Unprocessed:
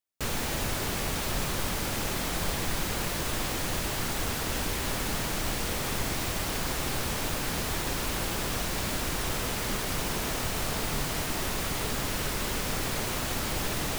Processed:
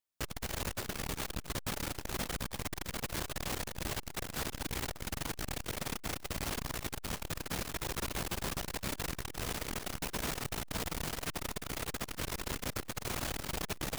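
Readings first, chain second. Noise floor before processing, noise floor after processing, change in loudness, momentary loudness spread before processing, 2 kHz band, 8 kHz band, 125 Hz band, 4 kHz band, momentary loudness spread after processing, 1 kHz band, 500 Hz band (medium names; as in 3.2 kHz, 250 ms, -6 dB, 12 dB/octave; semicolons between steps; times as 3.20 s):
-32 dBFS, -49 dBFS, -8.0 dB, 0 LU, -8.0 dB, -8.0 dB, -7.5 dB, -8.0 dB, 3 LU, -8.0 dB, -8.0 dB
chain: crackling interface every 0.13 s, samples 256, zero, from 0.82 s; transformer saturation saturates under 330 Hz; trim -2 dB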